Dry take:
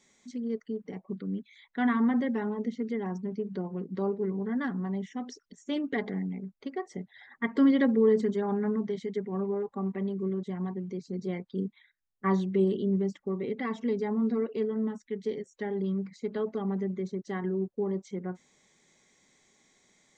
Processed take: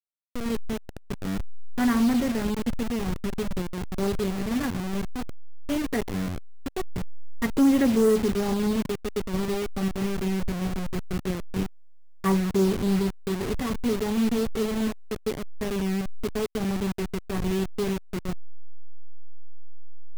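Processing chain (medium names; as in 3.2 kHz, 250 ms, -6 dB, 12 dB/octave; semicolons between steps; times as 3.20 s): send-on-delta sampling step -30 dBFS; bass shelf 110 Hz +8 dB; waveshaping leveller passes 1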